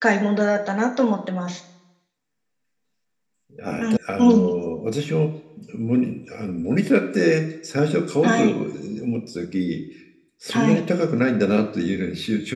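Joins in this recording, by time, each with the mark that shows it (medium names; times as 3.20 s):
3.97 s: sound stops dead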